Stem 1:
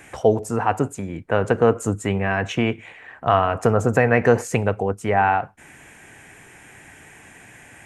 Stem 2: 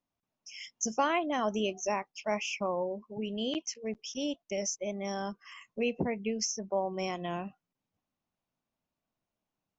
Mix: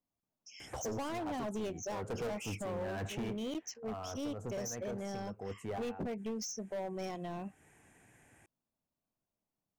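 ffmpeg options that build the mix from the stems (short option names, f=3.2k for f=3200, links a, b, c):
-filter_complex "[0:a]adelay=600,volume=-3.5dB,afade=t=out:st=3.27:d=0.48:silence=0.281838[a];[1:a]volume=-2dB,asplit=2[b][c];[c]apad=whole_len=373044[d];[a][d]sidechaincompress=threshold=-41dB:ratio=16:attack=7.4:release=318[e];[e][b]amix=inputs=2:normalize=0,asoftclip=type=hard:threshold=-33.5dB,equalizer=f=2.6k:w=0.45:g=-7"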